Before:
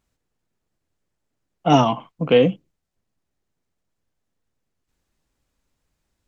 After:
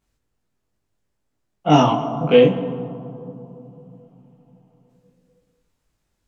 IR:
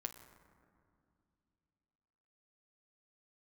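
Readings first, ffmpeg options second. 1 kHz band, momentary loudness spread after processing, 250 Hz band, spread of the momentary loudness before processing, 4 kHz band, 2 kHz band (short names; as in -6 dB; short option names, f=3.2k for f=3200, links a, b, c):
+1.5 dB, 20 LU, +2.5 dB, 10 LU, +1.0 dB, +1.5 dB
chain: -filter_complex "[0:a]asplit=2[a][b];[1:a]atrim=start_sample=2205,asetrate=30429,aresample=44100,adelay=20[c];[b][c]afir=irnorm=-1:irlink=0,volume=4dB[d];[a][d]amix=inputs=2:normalize=0,volume=-3.5dB"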